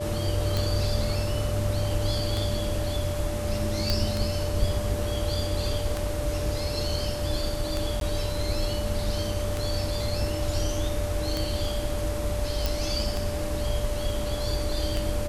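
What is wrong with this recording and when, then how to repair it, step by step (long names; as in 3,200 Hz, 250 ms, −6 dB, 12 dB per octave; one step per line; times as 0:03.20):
scratch tick 33 1/3 rpm
whistle 590 Hz −32 dBFS
0:03.90: click −10 dBFS
0:08.00–0:08.01: drop-out 12 ms
0:12.66: click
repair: click removal
notch filter 590 Hz, Q 30
repair the gap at 0:08.00, 12 ms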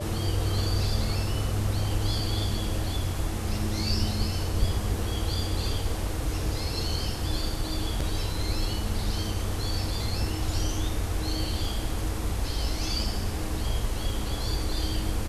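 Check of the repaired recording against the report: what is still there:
none of them is left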